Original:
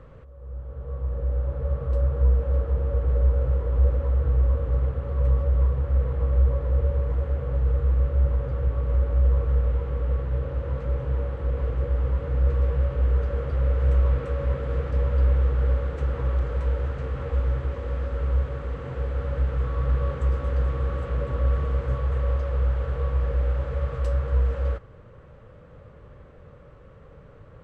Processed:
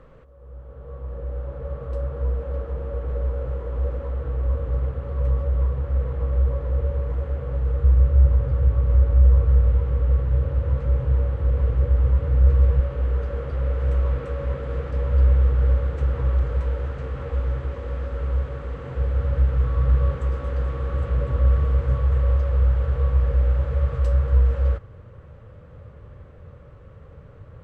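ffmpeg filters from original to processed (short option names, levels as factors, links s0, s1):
-af "asetnsamples=n=441:p=0,asendcmd='4.45 equalizer g -1;7.84 equalizer g 9.5;12.8 equalizer g -2;15.09 equalizer g 6;16.62 equalizer g -0.5;18.95 equalizer g 8.5;20.16 equalizer g -1.5;20.93 equalizer g 8',equalizer=f=87:t=o:w=1.1:g=-8.5"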